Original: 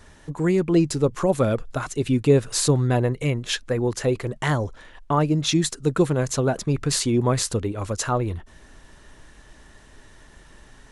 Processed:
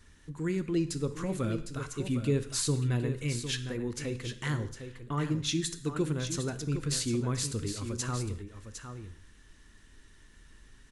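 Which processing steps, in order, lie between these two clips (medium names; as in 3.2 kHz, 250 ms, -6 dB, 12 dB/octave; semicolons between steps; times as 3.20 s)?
peaking EQ 690 Hz -13.5 dB 1.1 oct; on a send: delay 757 ms -9 dB; on the sum: gated-style reverb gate 230 ms falling, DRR 10 dB; trim -8 dB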